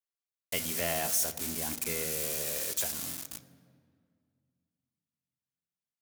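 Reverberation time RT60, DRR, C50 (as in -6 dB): 2.1 s, 8.5 dB, 15.0 dB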